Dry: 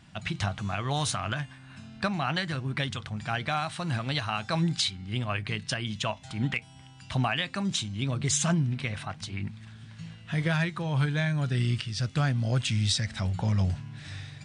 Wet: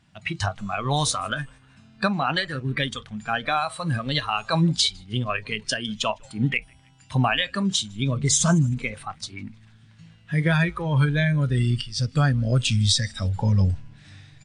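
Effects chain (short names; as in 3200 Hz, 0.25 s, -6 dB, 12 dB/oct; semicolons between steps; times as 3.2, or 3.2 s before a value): frequency-shifting echo 0.156 s, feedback 52%, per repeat -100 Hz, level -20 dB; spectral noise reduction 13 dB; gain +6.5 dB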